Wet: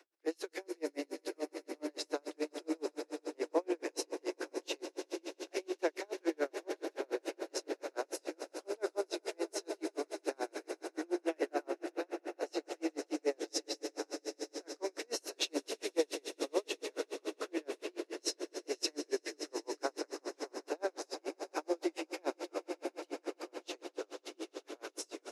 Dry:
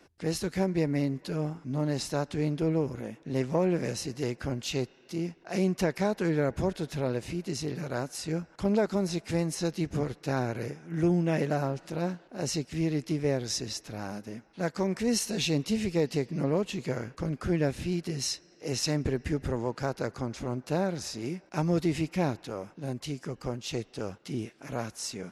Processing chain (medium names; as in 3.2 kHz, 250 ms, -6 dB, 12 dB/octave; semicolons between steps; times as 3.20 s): steep high-pass 300 Hz 72 dB/octave; echo with a slow build-up 83 ms, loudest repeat 8, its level -14.5 dB; logarithmic tremolo 7 Hz, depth 39 dB; trim -1 dB